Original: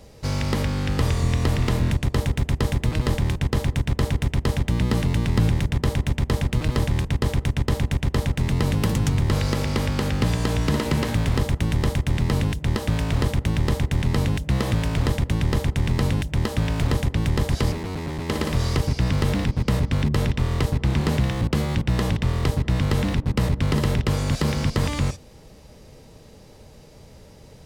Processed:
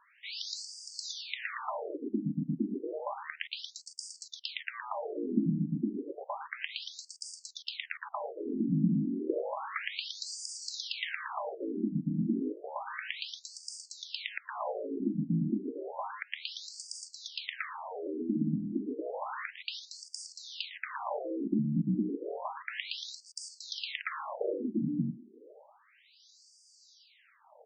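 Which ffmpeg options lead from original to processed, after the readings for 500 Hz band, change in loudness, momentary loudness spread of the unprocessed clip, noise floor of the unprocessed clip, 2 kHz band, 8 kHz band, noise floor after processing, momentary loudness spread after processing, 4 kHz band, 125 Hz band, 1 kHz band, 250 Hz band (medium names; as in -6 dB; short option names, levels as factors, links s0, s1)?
-10.0 dB, -12.5 dB, 2 LU, -47 dBFS, -9.0 dB, -8.5 dB, -64 dBFS, 11 LU, -7.0 dB, -20.5 dB, -8.5 dB, -8.0 dB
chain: -af "aecho=1:1:104:0.168,afftfilt=real='re*between(b*sr/1024,220*pow(6600/220,0.5+0.5*sin(2*PI*0.31*pts/sr))/1.41,220*pow(6600/220,0.5+0.5*sin(2*PI*0.31*pts/sr))*1.41)':imag='im*between(b*sr/1024,220*pow(6600/220,0.5+0.5*sin(2*PI*0.31*pts/sr))/1.41,220*pow(6600/220,0.5+0.5*sin(2*PI*0.31*pts/sr))*1.41)':win_size=1024:overlap=0.75"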